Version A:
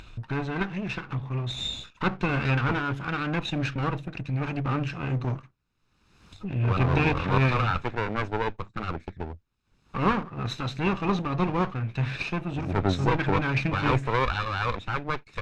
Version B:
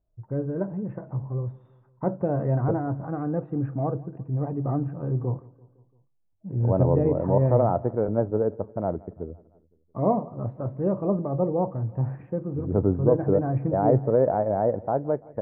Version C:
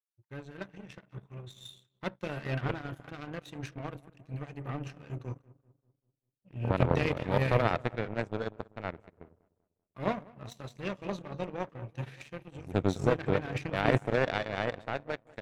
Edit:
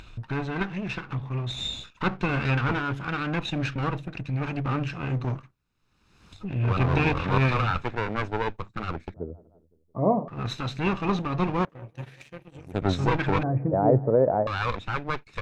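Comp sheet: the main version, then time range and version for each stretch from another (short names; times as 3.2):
A
9.14–10.28 from B
11.65–12.82 from C
13.43–14.47 from B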